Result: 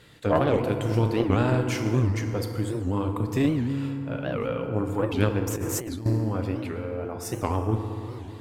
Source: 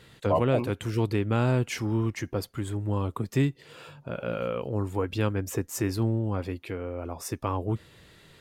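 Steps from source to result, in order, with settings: FDN reverb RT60 2.9 s, low-frequency decay 1.25×, high-frequency decay 0.45×, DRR 3.5 dB; added harmonics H 2 -6 dB, 4 -24 dB, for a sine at -10.5 dBFS; 5.47–6.06 negative-ratio compressor -31 dBFS, ratio -1; record warp 78 rpm, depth 250 cents

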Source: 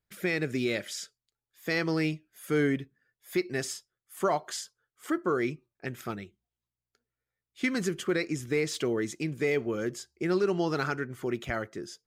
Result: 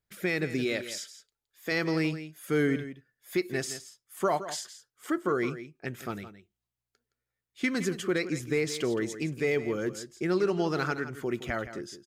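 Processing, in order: 0.64–1.72 bell 140 Hz -7.5 dB 0.91 oct; echo 0.167 s -12.5 dB

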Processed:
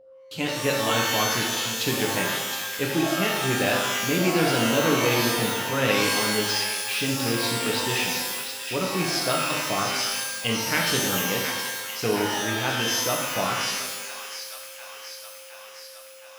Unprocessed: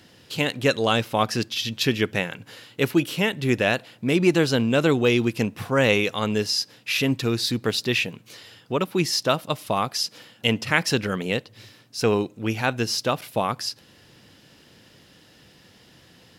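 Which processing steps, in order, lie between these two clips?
gate -40 dBFS, range -28 dB; whine 530 Hz -43 dBFS; on a send: thin delay 0.717 s, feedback 67%, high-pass 1400 Hz, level -7 dB; on the sum: shimmer reverb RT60 1.1 s, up +12 st, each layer -2 dB, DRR -1 dB; gain -6.5 dB

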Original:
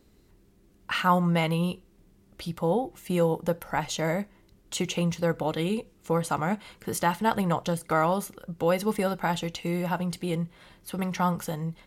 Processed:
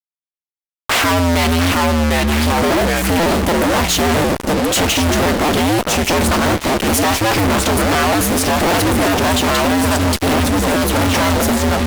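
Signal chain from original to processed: cycle switcher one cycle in 2, inverted; echoes that change speed 0.583 s, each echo -2 st, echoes 3, each echo -6 dB; fuzz box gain 47 dB, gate -43 dBFS

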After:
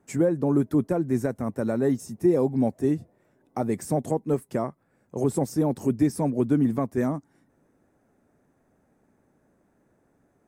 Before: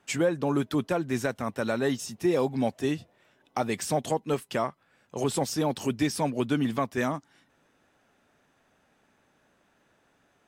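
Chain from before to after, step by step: EQ curve 340 Hz 0 dB, 1400 Hz -12 dB, 2100 Hz -13 dB, 3000 Hz -24 dB, 9000 Hz -7 dB; gain +5 dB

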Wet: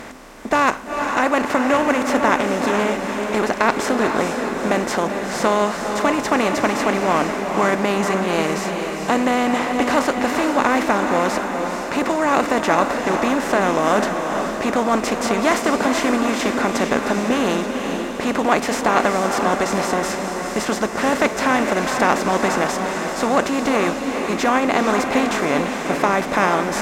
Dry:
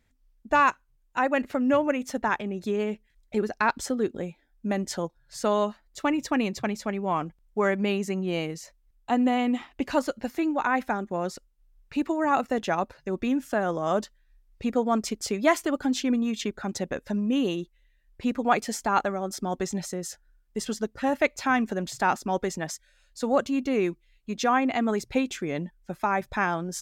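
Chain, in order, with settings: per-bin compression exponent 0.4; diffused feedback echo 0.452 s, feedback 58%, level -5 dB

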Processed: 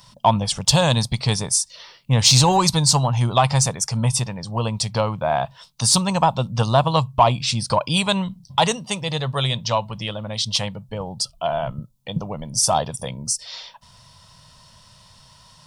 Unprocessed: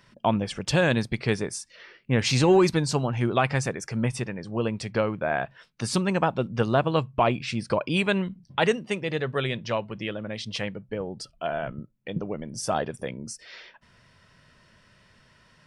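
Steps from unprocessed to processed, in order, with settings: EQ curve 140 Hz 0 dB, 370 Hz -16 dB, 530 Hz -6 dB, 970 Hz +4 dB, 1600 Hz -12 dB, 2400 Hz -8 dB, 3600 Hz +5 dB, 10000 Hz +9 dB; in parallel at -4 dB: soft clip -17.5 dBFS, distortion -15 dB; on the sum: gain +4.5 dB

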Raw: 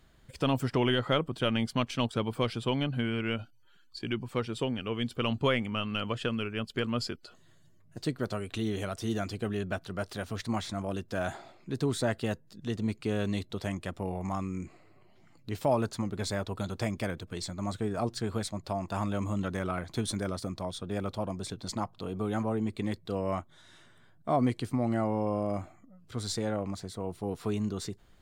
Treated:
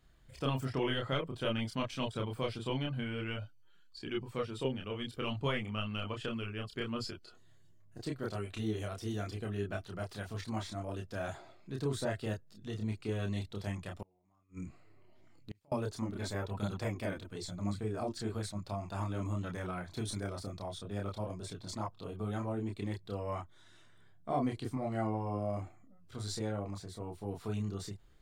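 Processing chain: chorus voices 6, 0.5 Hz, delay 29 ms, depth 1.7 ms; 14.02–15.72 flipped gate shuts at -30 dBFS, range -34 dB; gain -3 dB

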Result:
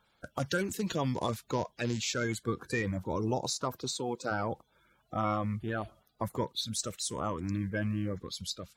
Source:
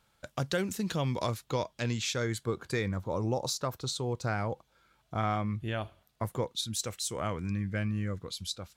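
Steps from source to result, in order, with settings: bin magnitudes rounded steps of 30 dB; 3.75–4.3 HPF 89 Hz -> 310 Hz 12 dB/oct

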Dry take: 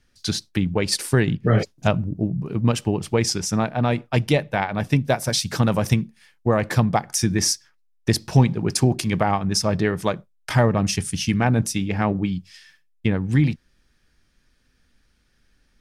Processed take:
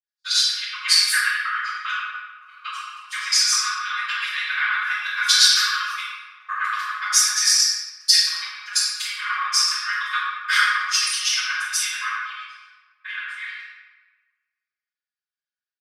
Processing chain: local time reversal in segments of 80 ms; gate -45 dBFS, range -22 dB; comb 4.8 ms, depth 86%; compressor 4:1, threshold -21 dBFS, peak gain reduction 9.5 dB; transient shaper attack +3 dB, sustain -12 dB; rippled Chebyshev high-pass 1100 Hz, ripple 6 dB; reverb RT60 2.1 s, pre-delay 3 ms, DRR -20 dB; three-band expander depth 40%; gain -5.5 dB

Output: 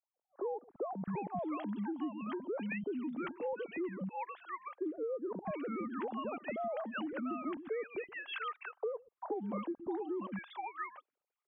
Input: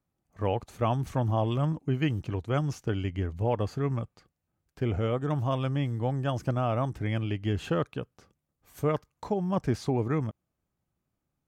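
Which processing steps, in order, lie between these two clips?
sine-wave speech; three bands offset in time mids, lows, highs 0.12/0.69 s, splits 210/940 Hz; compressor 6:1, threshold -37 dBFS, peak gain reduction 14.5 dB; gain +1 dB

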